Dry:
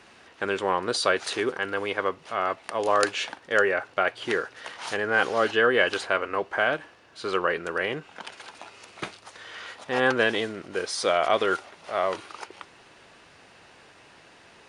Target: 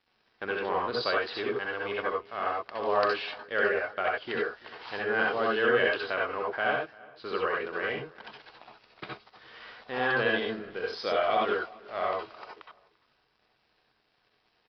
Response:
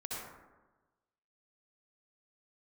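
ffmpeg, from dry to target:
-filter_complex "[0:a]aresample=11025,aeval=exprs='sgn(val(0))*max(abs(val(0))-0.00355,0)':c=same,aresample=44100,asplit=2[s0][s1];[s1]adelay=342,lowpass=f=2300:p=1,volume=0.0794,asplit=2[s2][s3];[s3]adelay=342,lowpass=f=2300:p=1,volume=0.28[s4];[s0][s2][s4]amix=inputs=3:normalize=0[s5];[1:a]atrim=start_sample=2205,atrim=end_sample=4410[s6];[s5][s6]afir=irnorm=-1:irlink=0,volume=0.794"

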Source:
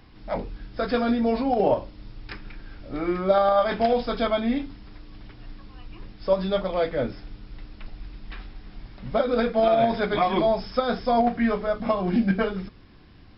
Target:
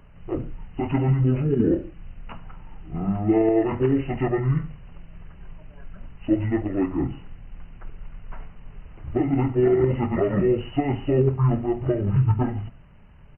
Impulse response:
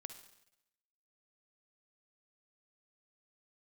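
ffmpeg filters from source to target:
-filter_complex "[0:a]asetrate=24750,aresample=44100,atempo=1.7818,asplit=2[s0][s1];[s1]adelay=100,highpass=300,lowpass=3400,asoftclip=type=hard:threshold=0.112,volume=0.0398[s2];[s0][s2]amix=inputs=2:normalize=0,asplit=2[s3][s4];[1:a]atrim=start_sample=2205,afade=t=out:st=0.19:d=0.01,atrim=end_sample=8820,lowshelf=f=410:g=7.5[s5];[s4][s5]afir=irnorm=-1:irlink=0,volume=1.12[s6];[s3][s6]amix=inputs=2:normalize=0,volume=0.562"

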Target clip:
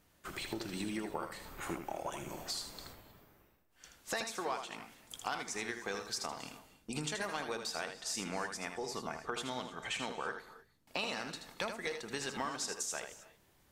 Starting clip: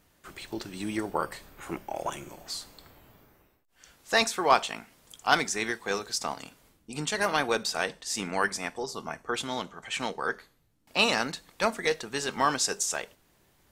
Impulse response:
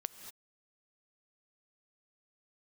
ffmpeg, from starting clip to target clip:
-filter_complex "[0:a]agate=range=0.501:threshold=0.002:ratio=16:detection=peak,acompressor=threshold=0.0126:ratio=6,asplit=2[s0][s1];[1:a]atrim=start_sample=2205,adelay=79[s2];[s1][s2]afir=irnorm=-1:irlink=0,volume=0.562[s3];[s0][s3]amix=inputs=2:normalize=0,volume=1.19"

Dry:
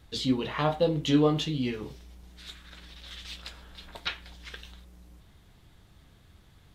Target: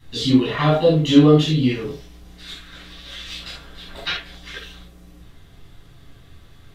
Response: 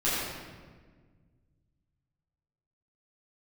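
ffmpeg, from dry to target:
-filter_complex "[0:a]bandreject=f=910:w=29[s0];[1:a]atrim=start_sample=2205,atrim=end_sample=3969[s1];[s0][s1]afir=irnorm=-1:irlink=0"

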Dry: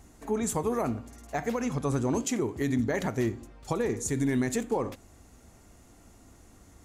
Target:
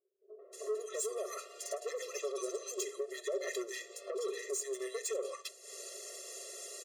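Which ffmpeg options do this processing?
-filter_complex "[0:a]equalizer=f=500:t=o:w=1:g=4,equalizer=f=1000:t=o:w=1:g=-4,equalizer=f=4000:t=o:w=1:g=9,equalizer=f=8000:t=o:w=1:g=9,acrossover=split=160|1100[s0][s1][s2];[s1]adelay=390[s3];[s2]adelay=530[s4];[s0][s3][s4]amix=inputs=3:normalize=0,acrossover=split=160[s5][s6];[s6]acompressor=mode=upward:threshold=0.0178:ratio=2.5[s7];[s5][s7]amix=inputs=2:normalize=0,agate=range=0.0224:threshold=0.0126:ratio=3:detection=peak,acompressor=threshold=0.00794:ratio=4,asoftclip=type=tanh:threshold=0.0126,aecho=1:1:5.3:0.38,afftfilt=real='re*eq(mod(floor(b*sr/1024/350),2),1)':imag='im*eq(mod(floor(b*sr/1024/350),2),1)':win_size=1024:overlap=0.75,volume=2.99"

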